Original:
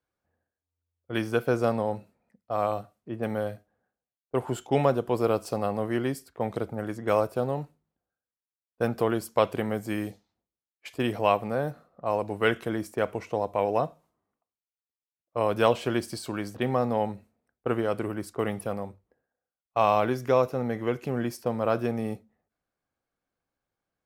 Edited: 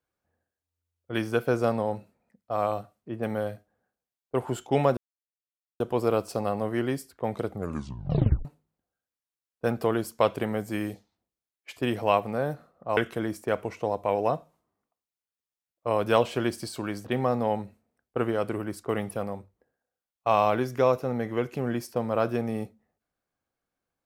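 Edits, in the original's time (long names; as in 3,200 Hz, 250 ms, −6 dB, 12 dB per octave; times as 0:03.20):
0:04.97: splice in silence 0.83 s
0:06.66: tape stop 0.96 s
0:12.14–0:12.47: remove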